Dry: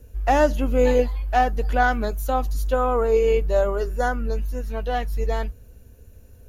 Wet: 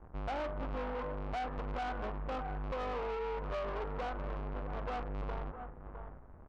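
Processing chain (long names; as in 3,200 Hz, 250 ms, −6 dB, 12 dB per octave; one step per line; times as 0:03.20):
each half-wave held at its own peak
inverse Chebyshev low-pass filter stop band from 7,200 Hz, stop band 80 dB
hum removal 55.15 Hz, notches 36
on a send: single-tap delay 659 ms −17.5 dB
on the sum: downward compressor 6 to 1, threshold −22 dBFS, peak gain reduction 11 dB
tilt shelving filter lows −6 dB, about 670 Hz
soft clipping −28 dBFS, distortion −10 dB
level −6 dB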